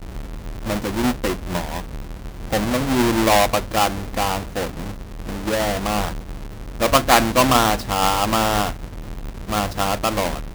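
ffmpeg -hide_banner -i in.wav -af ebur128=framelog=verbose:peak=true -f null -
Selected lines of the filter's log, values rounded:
Integrated loudness:
  I:         -20.1 LUFS
  Threshold: -31.1 LUFS
Loudness range:
  LRA:         4.8 LU
  Threshold: -40.5 LUFS
  LRA low:   -23.5 LUFS
  LRA high:  -18.7 LUFS
True peak:
  Peak:        0.2 dBFS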